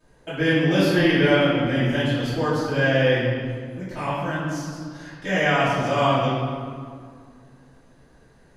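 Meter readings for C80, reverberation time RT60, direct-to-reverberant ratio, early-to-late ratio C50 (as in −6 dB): 0.5 dB, 2.1 s, −13.5 dB, −1.5 dB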